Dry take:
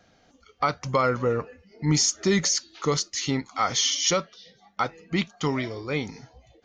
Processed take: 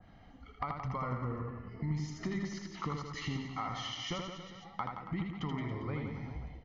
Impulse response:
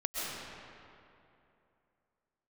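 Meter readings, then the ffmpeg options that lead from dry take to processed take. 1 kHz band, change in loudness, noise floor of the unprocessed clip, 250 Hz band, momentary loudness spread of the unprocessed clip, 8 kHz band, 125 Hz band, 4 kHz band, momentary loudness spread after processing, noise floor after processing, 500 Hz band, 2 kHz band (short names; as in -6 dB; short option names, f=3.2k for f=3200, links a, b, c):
-11.0 dB, -13.5 dB, -61 dBFS, -10.0 dB, 9 LU, -27.5 dB, -7.0 dB, -16.5 dB, 7 LU, -56 dBFS, -17.0 dB, -13.0 dB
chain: -filter_complex "[0:a]lowpass=2.4k,lowshelf=f=93:g=11,aecho=1:1:1:0.51,acompressor=threshold=-35dB:ratio=6,aecho=1:1:80|172|277.8|399.5|539.4:0.631|0.398|0.251|0.158|0.1,asplit=2[a][b];[1:a]atrim=start_sample=2205,afade=t=out:st=0.39:d=0.01,atrim=end_sample=17640[c];[b][c]afir=irnorm=-1:irlink=0,volume=-19dB[d];[a][d]amix=inputs=2:normalize=0,adynamicequalizer=threshold=0.00398:dfrequency=1900:dqfactor=0.7:tfrequency=1900:tqfactor=0.7:attack=5:release=100:ratio=0.375:range=2.5:mode=cutabove:tftype=highshelf,volume=-2dB"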